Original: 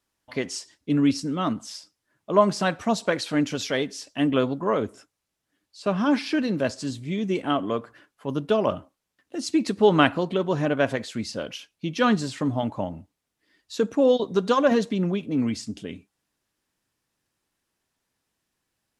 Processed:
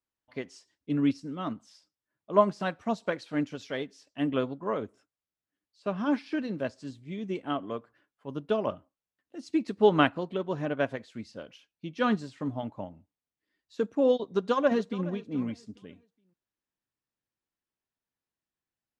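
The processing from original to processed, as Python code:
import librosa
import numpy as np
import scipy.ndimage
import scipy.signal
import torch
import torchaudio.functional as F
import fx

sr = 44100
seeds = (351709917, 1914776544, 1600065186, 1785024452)

y = fx.echo_throw(x, sr, start_s=14.24, length_s=0.83, ms=420, feedback_pct=35, wet_db=-14.5)
y = fx.high_shelf(y, sr, hz=6500.0, db=-11.0)
y = fx.upward_expand(y, sr, threshold_db=-37.0, expansion=1.5)
y = y * librosa.db_to_amplitude(-2.5)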